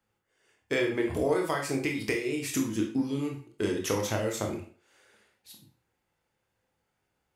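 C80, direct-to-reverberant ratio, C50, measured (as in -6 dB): 11.5 dB, 1.5 dB, 7.5 dB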